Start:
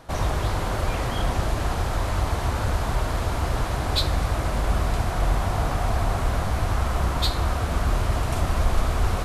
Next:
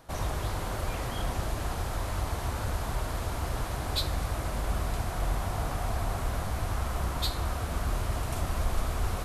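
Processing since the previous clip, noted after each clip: treble shelf 9.8 kHz +10.5 dB; trim -7.5 dB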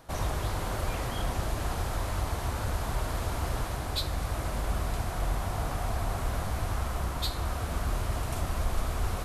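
gain riding 0.5 s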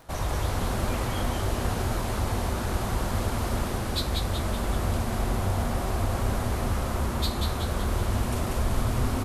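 frequency-shifting echo 188 ms, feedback 54%, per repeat -140 Hz, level -3.5 dB; crackle 19 per s -42 dBFS; trim +1.5 dB

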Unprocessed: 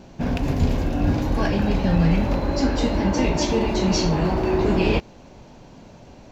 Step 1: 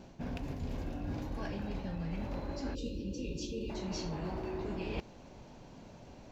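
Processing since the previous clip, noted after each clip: reverse; compression 6:1, threshold -28 dBFS, peak gain reduction 14 dB; reverse; time-frequency box 2.74–3.70 s, 570–2400 Hz -28 dB; trim -7.5 dB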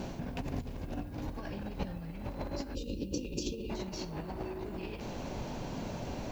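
hard clipper -30 dBFS, distortion -28 dB; compressor with a negative ratio -43 dBFS, ratio -0.5; added noise violet -76 dBFS; trim +7 dB

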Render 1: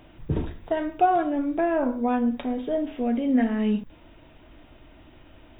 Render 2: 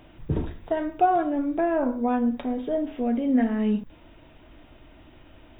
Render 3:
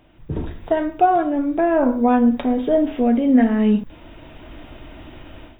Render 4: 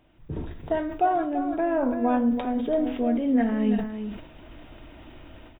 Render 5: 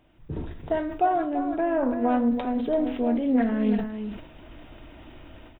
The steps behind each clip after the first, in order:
dynamic bell 2.9 kHz, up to -4 dB, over -47 dBFS, Q 1
level rider gain up to 15 dB; trim -3.5 dB
delay 335 ms -9.5 dB; decay stretcher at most 83 dB/s; trim -7.5 dB
loudspeaker Doppler distortion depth 0.18 ms

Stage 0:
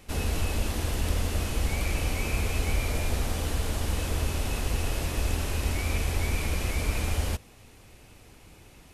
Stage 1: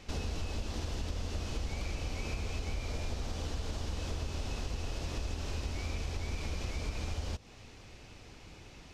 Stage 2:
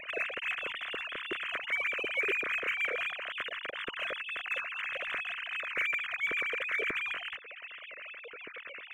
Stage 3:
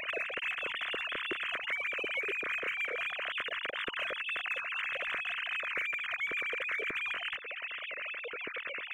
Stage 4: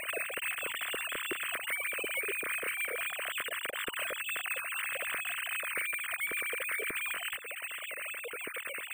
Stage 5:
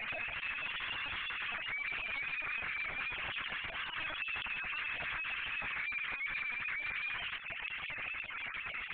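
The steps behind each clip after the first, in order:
resonant high shelf 8 kHz -13.5 dB, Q 1.5; compression 5:1, threshold -33 dBFS, peak gain reduction 12 dB; dynamic bell 2 kHz, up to -4 dB, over -54 dBFS, Q 1.2
formants replaced by sine waves; in parallel at -4 dB: saturation -35.5 dBFS, distortion -10 dB; on the sum: static phaser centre 2 kHz, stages 4
compression, threshold -39 dBFS, peak gain reduction 12 dB; wow and flutter 16 cents; trim +6 dB
sample-and-hold 4×
overload inside the chain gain 35.5 dB; brick-wall FIR high-pass 580 Hz; LPC vocoder at 8 kHz pitch kept

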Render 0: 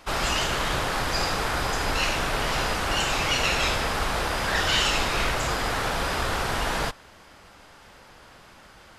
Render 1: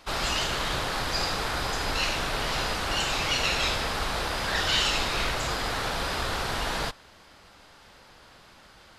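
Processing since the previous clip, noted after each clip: peaking EQ 4.1 kHz +5 dB 0.68 oct; trim -3.5 dB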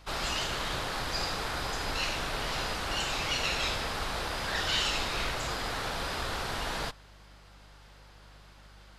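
mains buzz 50 Hz, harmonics 4, -51 dBFS -8 dB/octave; trim -4.5 dB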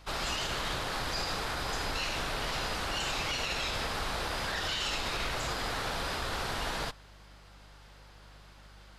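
peak limiter -23.5 dBFS, peak gain reduction 6.5 dB

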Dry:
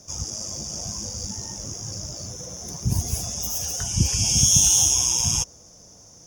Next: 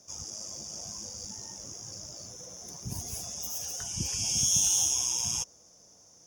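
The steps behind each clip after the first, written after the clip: bass shelf 160 Hz -11.5 dB; trim -8 dB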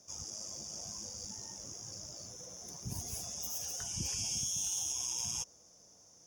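peak limiter -23.5 dBFS, peak gain reduction 10 dB; trim -3.5 dB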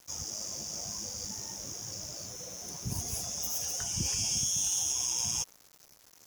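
bit crusher 9-bit; trim +5.5 dB

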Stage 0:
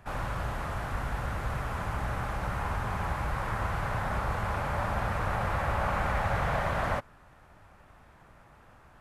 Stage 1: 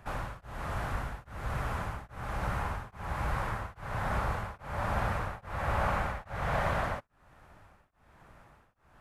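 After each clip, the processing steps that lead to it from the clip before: tremolo of two beating tones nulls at 1.2 Hz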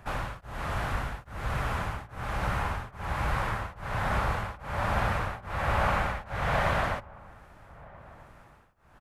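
dynamic bell 3.1 kHz, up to +4 dB, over -52 dBFS, Q 0.83; echo from a far wall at 220 m, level -21 dB; trim +3 dB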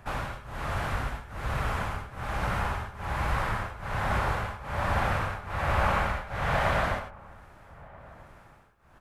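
gated-style reverb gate 120 ms rising, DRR 6.5 dB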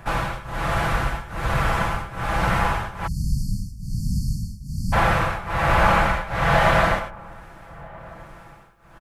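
spectral selection erased 3.07–4.93 s, 280–4300 Hz; comb 6 ms, depth 47%; trim +8 dB

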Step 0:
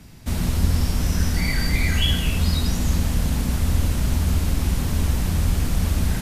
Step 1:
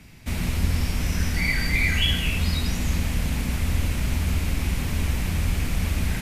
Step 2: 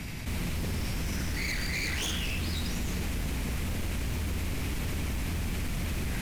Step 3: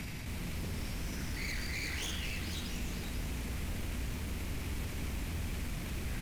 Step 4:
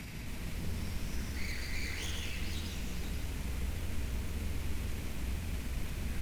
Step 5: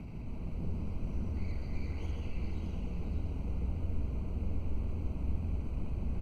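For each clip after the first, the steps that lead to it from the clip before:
peaking EQ 2.3 kHz +9 dB 0.74 oct; trim -3.5 dB
wavefolder -21 dBFS; level flattener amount 70%; trim -6.5 dB
peak limiter -34 dBFS, peak gain reduction 10 dB; delay 492 ms -8 dB; trim +1 dB
reverberation, pre-delay 133 ms, DRR 5.5 dB; trim -3 dB
boxcar filter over 25 samples; delay 600 ms -6 dB; trim +1.5 dB

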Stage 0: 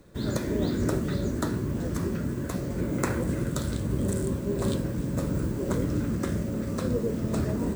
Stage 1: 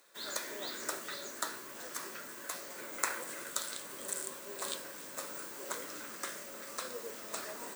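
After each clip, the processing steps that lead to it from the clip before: high-pass 850 Hz 12 dB/octave; tilt EQ +1.5 dB/octave; trim -2 dB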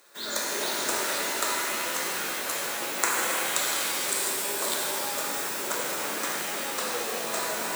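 pitch-shifted reverb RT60 3.2 s, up +7 st, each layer -2 dB, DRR -3 dB; trim +6 dB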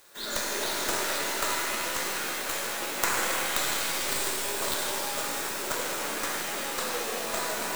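tracing distortion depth 0.28 ms; companded quantiser 4-bit; trim -1 dB

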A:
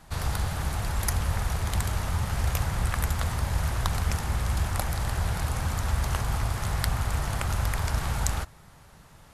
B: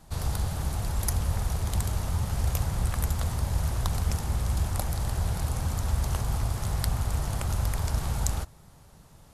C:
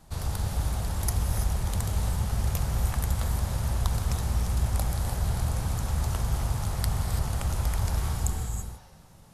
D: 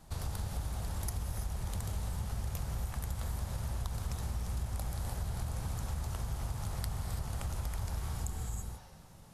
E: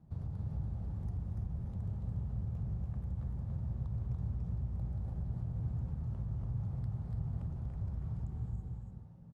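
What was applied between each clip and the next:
peaking EQ 1.8 kHz -8 dB 1.9 oct
spectral replace 8.09–8.90 s, 500–6400 Hz both; gated-style reverb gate 360 ms rising, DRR 4 dB; trim -1.5 dB
compression 4:1, threshold -32 dBFS, peak gain reduction 11 dB; trim -2 dB
band-pass filter 140 Hz, Q 1.3; delay 287 ms -4 dB; trim +3 dB

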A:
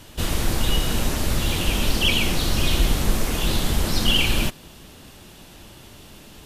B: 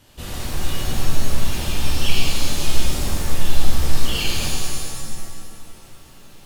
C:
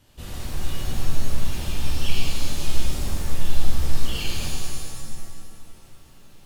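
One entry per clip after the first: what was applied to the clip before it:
pitch-shifted reverb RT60 1.8 s, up +7 st, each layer -2 dB, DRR -3 dB; trim -10 dB
bass shelf 190 Hz +4.5 dB; trim -7 dB

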